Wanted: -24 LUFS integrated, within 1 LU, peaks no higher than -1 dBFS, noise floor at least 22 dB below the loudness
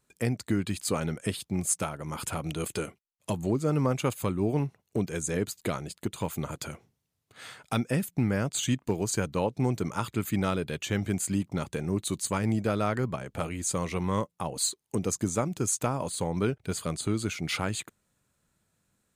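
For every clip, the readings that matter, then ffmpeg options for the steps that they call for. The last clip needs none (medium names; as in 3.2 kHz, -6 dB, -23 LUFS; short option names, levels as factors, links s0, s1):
loudness -30.5 LUFS; peak level -12.5 dBFS; loudness target -24.0 LUFS
-> -af "volume=2.11"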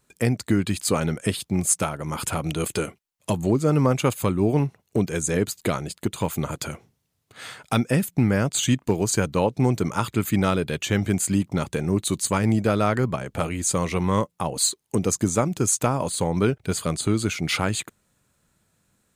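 loudness -24.0 LUFS; peak level -6.0 dBFS; noise floor -72 dBFS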